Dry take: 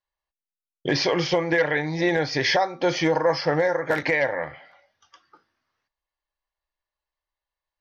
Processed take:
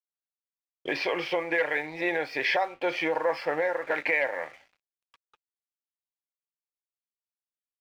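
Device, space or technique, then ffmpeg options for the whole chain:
pocket radio on a weak battery: -af "highpass=370,lowpass=3100,aeval=exprs='sgn(val(0))*max(abs(val(0))-0.00316,0)':channel_layout=same,equalizer=frequency=2500:width_type=o:width=0.36:gain=10,volume=-4.5dB"

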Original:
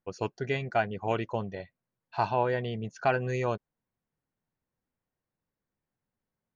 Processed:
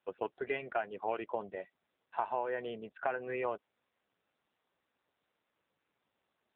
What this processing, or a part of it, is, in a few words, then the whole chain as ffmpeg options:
voicemail: -af "highpass=390,lowpass=2800,acompressor=threshold=-29dB:ratio=6" -ar 8000 -c:a libopencore_amrnb -b:a 7400

